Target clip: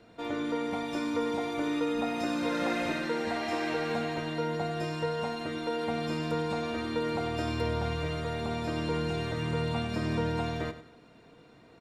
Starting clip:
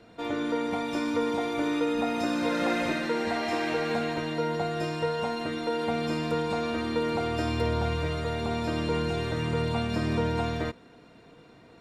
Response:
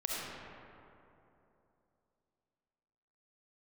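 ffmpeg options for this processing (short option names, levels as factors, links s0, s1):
-af "aecho=1:1:96|192|288:0.224|0.0716|0.0229,volume=0.708"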